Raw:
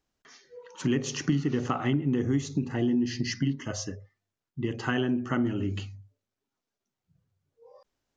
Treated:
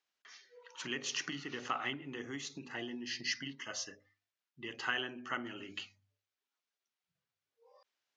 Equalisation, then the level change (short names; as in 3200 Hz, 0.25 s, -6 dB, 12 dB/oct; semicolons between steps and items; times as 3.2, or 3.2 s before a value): LPF 2900 Hz 12 dB/oct; differentiator; notches 50/100/150/200/250/300 Hz; +11.0 dB